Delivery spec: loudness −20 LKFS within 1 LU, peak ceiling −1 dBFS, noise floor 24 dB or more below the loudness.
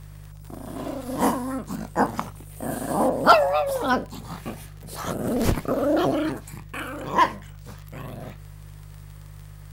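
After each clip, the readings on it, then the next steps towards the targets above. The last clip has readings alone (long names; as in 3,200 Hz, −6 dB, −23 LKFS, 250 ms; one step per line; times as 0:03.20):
crackle rate 30 per second; mains hum 50 Hz; hum harmonics up to 150 Hz; level of the hum −40 dBFS; integrated loudness −24.5 LKFS; sample peak −4.0 dBFS; target loudness −20.0 LKFS
→ click removal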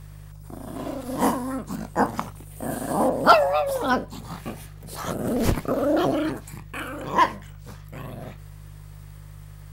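crackle rate 0.21 per second; mains hum 50 Hz; hum harmonics up to 150 Hz; level of the hum −40 dBFS
→ hum removal 50 Hz, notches 3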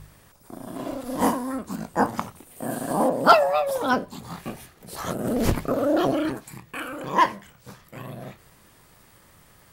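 mains hum none found; integrated loudness −24.0 LKFS; sample peak −3.0 dBFS; target loudness −20.0 LKFS
→ level +4 dB
brickwall limiter −1 dBFS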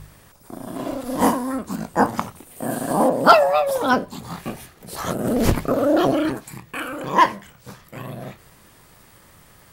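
integrated loudness −20.5 LKFS; sample peak −1.0 dBFS; background noise floor −51 dBFS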